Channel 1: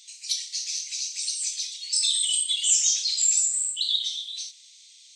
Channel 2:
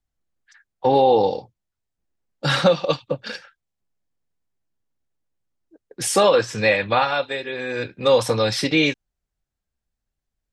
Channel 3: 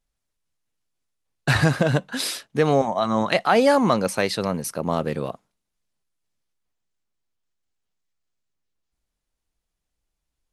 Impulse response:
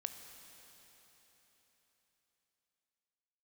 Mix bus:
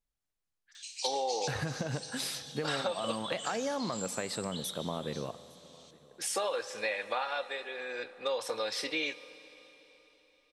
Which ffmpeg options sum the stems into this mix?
-filter_complex "[0:a]equalizer=f=3100:w=1.4:g=8,alimiter=limit=0.2:level=0:latency=1:release=482,adelay=750,volume=0.531,asplit=2[s0][s1];[s1]volume=0.158[s2];[1:a]highpass=470,adelay=200,volume=0.224,asplit=2[s3][s4];[s4]volume=0.562[s5];[2:a]acompressor=threshold=0.1:ratio=6,volume=0.237,asplit=4[s6][s7][s8][s9];[s7]volume=0.631[s10];[s8]volume=0.075[s11];[s9]apad=whole_len=260547[s12];[s0][s12]sidechaincompress=threshold=0.00251:ratio=8:attack=16:release=924[s13];[3:a]atrim=start_sample=2205[s14];[s2][s5][s10]amix=inputs=3:normalize=0[s15];[s15][s14]afir=irnorm=-1:irlink=0[s16];[s11]aecho=0:1:857:1[s17];[s13][s3][s6][s16][s17]amix=inputs=5:normalize=0,acompressor=threshold=0.0355:ratio=6"

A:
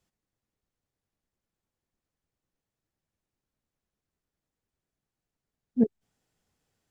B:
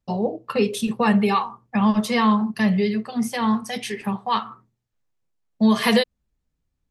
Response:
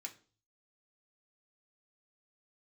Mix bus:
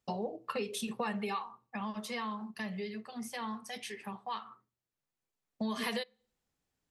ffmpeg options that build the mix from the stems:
-filter_complex "[0:a]volume=0.376[s0];[1:a]lowshelf=f=320:g=-7.5,volume=2.66,afade=t=out:st=1.19:d=0.56:silence=0.281838,afade=t=in:st=4.74:d=0.74:silence=0.334965,asplit=2[s1][s2];[s2]volume=0.158[s3];[2:a]atrim=start_sample=2205[s4];[s3][s4]afir=irnorm=-1:irlink=0[s5];[s0][s1][s5]amix=inputs=3:normalize=0,lowshelf=f=72:g=-9,acompressor=threshold=0.0178:ratio=4"

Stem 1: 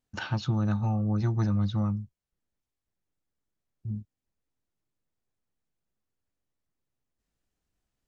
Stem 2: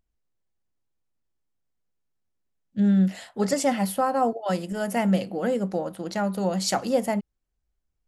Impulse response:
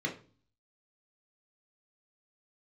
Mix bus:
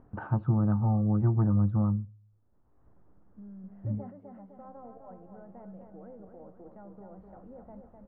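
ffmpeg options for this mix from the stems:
-filter_complex "[0:a]acompressor=mode=upward:threshold=0.0126:ratio=2.5,volume=1.12,asplit=3[s0][s1][s2];[s1]volume=0.0794[s3];[1:a]alimiter=limit=0.075:level=0:latency=1:release=68,adelay=350,volume=0.188,asplit=2[s4][s5];[s5]volume=0.596[s6];[s2]apad=whole_len=371690[s7];[s4][s7]sidechaingate=range=0.0224:threshold=0.00501:ratio=16:detection=peak[s8];[2:a]atrim=start_sample=2205[s9];[s3][s9]afir=irnorm=-1:irlink=0[s10];[s6]aecho=0:1:254|508|762|1016|1270|1524|1778:1|0.5|0.25|0.125|0.0625|0.0312|0.0156[s11];[s0][s8][s10][s11]amix=inputs=4:normalize=0,lowpass=f=1200:w=0.5412,lowpass=f=1200:w=1.3066"

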